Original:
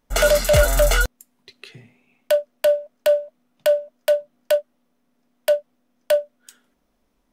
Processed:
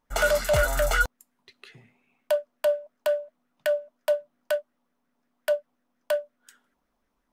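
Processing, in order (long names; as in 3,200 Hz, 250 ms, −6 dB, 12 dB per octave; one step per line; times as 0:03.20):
auto-filter bell 5.6 Hz 870–1,800 Hz +10 dB
level −8.5 dB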